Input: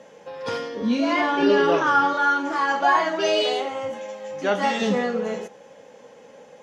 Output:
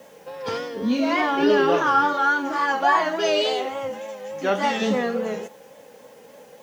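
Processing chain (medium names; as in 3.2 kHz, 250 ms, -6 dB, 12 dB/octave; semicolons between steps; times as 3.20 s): vibrato 3.5 Hz 61 cents; word length cut 10-bit, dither triangular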